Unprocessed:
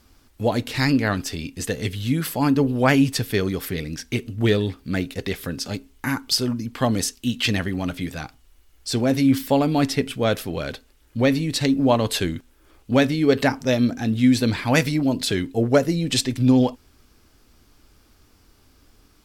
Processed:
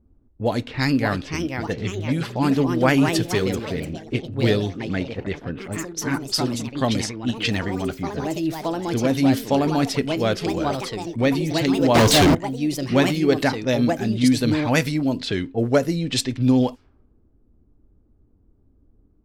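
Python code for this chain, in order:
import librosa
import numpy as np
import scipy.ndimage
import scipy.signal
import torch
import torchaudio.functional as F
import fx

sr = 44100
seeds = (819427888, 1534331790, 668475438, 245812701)

y = fx.env_lowpass(x, sr, base_hz=350.0, full_db=-16.5)
y = fx.echo_pitch(y, sr, ms=654, semitones=3, count=3, db_per_echo=-6.0)
y = fx.leveller(y, sr, passes=5, at=(11.95, 12.35))
y = y * 10.0 ** (-1.0 / 20.0)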